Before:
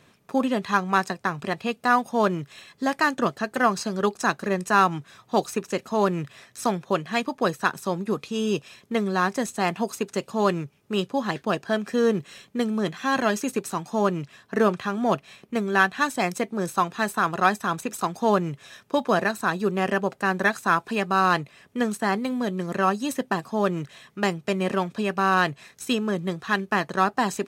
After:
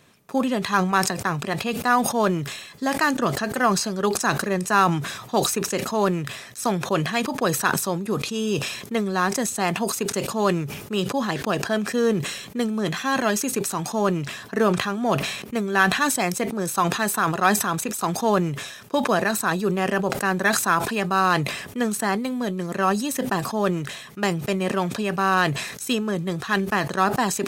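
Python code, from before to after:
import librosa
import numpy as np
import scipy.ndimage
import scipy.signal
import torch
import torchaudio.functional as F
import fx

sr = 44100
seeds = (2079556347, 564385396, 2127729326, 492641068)

y = fx.high_shelf(x, sr, hz=6600.0, db=7.0)
y = fx.sustainer(y, sr, db_per_s=57.0)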